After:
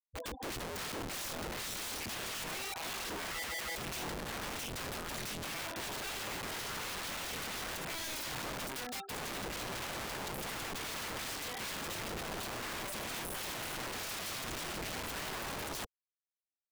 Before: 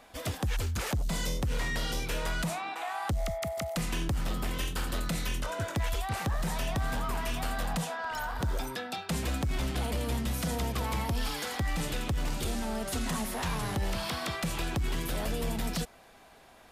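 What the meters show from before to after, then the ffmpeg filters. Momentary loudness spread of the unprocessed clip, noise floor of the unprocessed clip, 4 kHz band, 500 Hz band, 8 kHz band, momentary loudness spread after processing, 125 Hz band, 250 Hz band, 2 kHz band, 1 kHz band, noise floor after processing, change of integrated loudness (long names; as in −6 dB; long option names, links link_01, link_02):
2 LU, −55 dBFS, −2.0 dB, −7.0 dB, −1.5 dB, 2 LU, −15.5 dB, −10.5 dB, −3.0 dB, −6.0 dB, below −85 dBFS, −5.5 dB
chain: -af "afftfilt=real='re*gte(hypot(re,im),0.0251)':imag='im*gte(hypot(re,im),0.0251)':win_size=1024:overlap=0.75,aeval=exprs='(mod(53.1*val(0)+1,2)-1)/53.1':channel_layout=same,volume=-1dB"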